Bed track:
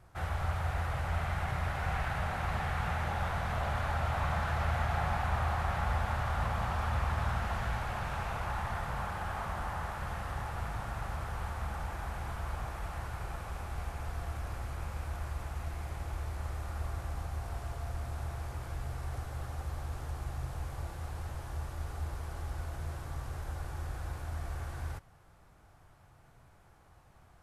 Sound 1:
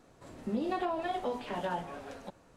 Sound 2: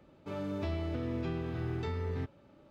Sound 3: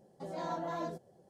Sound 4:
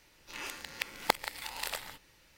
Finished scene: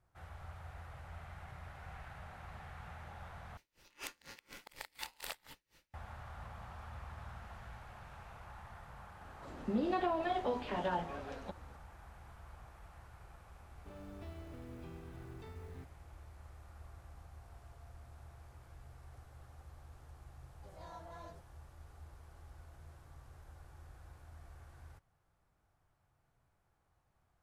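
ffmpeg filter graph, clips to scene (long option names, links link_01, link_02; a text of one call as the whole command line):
ffmpeg -i bed.wav -i cue0.wav -i cue1.wav -i cue2.wav -i cue3.wav -filter_complex "[0:a]volume=-16.5dB[link_01];[4:a]aeval=exprs='val(0)*pow(10,-29*(0.5-0.5*cos(2*PI*4.1*n/s))/20)':channel_layout=same[link_02];[1:a]lowpass=5600[link_03];[2:a]acrusher=bits=7:mode=log:mix=0:aa=0.000001[link_04];[3:a]equalizer=frequency=270:width_type=o:width=1.8:gain=-9[link_05];[link_01]asplit=2[link_06][link_07];[link_06]atrim=end=3.574[link_08];[link_02]atrim=end=2.37,asetpts=PTS-STARTPTS,volume=-1.5dB[link_09];[link_07]atrim=start=5.936[link_10];[link_03]atrim=end=2.56,asetpts=PTS-STARTPTS,volume=-1dB,afade=type=in:duration=0.004:curve=hsin,afade=type=out:start_time=2.556:duration=0.004:curve=hsin,adelay=9210[link_11];[link_04]atrim=end=2.7,asetpts=PTS-STARTPTS,volume=-15dB,afade=type=in:duration=0.004:curve=hsin,afade=type=out:start_time=2.696:duration=0.004:curve=hsin,adelay=13590[link_12];[link_05]atrim=end=1.29,asetpts=PTS-STARTPTS,volume=-11.5dB,afade=type=in:duration=0.004:curve=hsin,afade=type=out:start_time=1.286:duration=0.004:curve=hsin,adelay=20430[link_13];[link_08][link_09]acrossfade=duration=0.004:curve1=hsin:curve2=hsin[link_14];[link_14][link_10]acrossfade=duration=0.004:curve1=hsin:curve2=hsin[link_15];[link_15][link_11][link_12][link_13]amix=inputs=4:normalize=0" out.wav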